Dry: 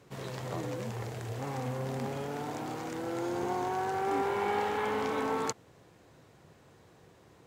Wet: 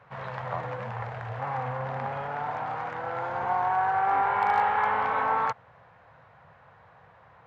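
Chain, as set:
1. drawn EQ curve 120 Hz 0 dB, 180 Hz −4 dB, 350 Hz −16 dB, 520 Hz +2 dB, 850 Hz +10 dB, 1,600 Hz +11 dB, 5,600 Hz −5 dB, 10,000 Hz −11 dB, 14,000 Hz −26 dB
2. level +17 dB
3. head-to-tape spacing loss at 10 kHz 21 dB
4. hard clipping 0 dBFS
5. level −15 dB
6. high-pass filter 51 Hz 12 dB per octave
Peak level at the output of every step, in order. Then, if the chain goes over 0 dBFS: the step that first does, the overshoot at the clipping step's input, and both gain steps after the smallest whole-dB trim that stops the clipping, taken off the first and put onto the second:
−12.0, +5.0, +3.0, 0.0, −15.0, −14.5 dBFS
step 2, 3.0 dB
step 2 +14 dB, step 5 −12 dB

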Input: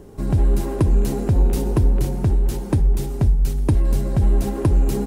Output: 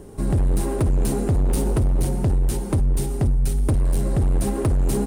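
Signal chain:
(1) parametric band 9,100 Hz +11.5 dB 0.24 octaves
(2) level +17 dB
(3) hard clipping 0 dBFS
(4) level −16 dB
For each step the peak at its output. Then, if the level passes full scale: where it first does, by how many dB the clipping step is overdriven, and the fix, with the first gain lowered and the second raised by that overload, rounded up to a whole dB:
−7.0, +10.0, 0.0, −16.0 dBFS
step 2, 10.0 dB
step 2 +7 dB, step 4 −6 dB

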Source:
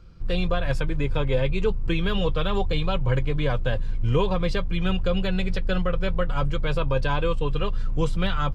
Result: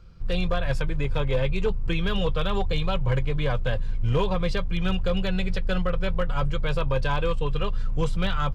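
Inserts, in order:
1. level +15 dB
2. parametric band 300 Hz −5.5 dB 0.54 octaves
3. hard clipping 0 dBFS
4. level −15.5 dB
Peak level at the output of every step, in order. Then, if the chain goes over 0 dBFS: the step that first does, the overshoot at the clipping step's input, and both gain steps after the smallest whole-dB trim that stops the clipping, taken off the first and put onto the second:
+4.5, +4.5, 0.0, −15.5 dBFS
step 1, 4.5 dB
step 1 +10 dB, step 4 −10.5 dB

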